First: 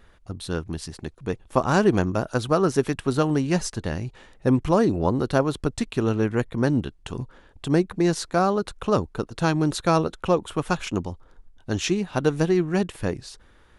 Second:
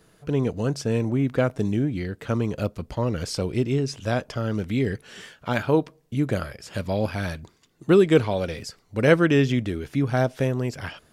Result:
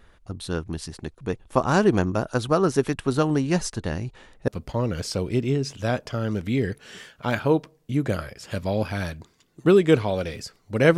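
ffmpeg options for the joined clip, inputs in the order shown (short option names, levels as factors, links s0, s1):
-filter_complex "[0:a]apad=whole_dur=10.97,atrim=end=10.97,atrim=end=4.482[s0];[1:a]atrim=start=2.708:end=9.2[s1];[s0][s1]acrossfade=d=0.004:c1=hsin:c2=hsin"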